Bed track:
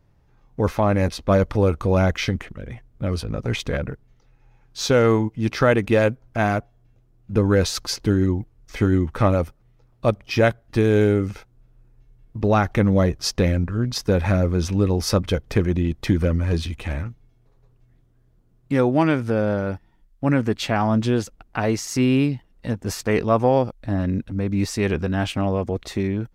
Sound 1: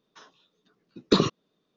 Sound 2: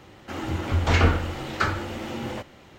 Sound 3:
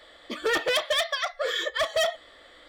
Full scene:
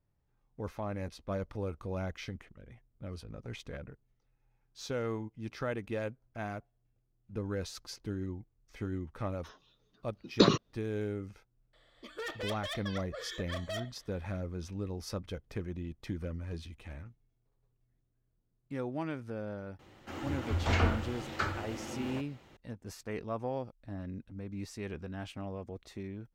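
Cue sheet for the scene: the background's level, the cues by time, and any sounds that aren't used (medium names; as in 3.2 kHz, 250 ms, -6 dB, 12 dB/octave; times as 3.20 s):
bed track -18.5 dB
9.28 s: add 1 -3 dB
11.73 s: add 3 -15 dB
19.79 s: add 2 -9 dB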